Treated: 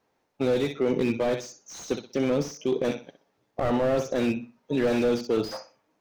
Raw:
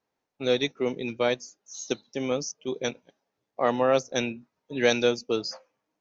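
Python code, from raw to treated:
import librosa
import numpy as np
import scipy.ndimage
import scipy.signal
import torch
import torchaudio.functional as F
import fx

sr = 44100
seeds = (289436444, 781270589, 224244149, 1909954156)

p1 = fx.high_shelf(x, sr, hz=3200.0, db=-5.0)
p2 = fx.over_compress(p1, sr, threshold_db=-33.0, ratio=-1.0)
p3 = p1 + F.gain(torch.from_numpy(p2), 0.5).numpy()
p4 = fx.room_flutter(p3, sr, wall_m=10.7, rt60_s=0.31)
y = fx.slew_limit(p4, sr, full_power_hz=52.0)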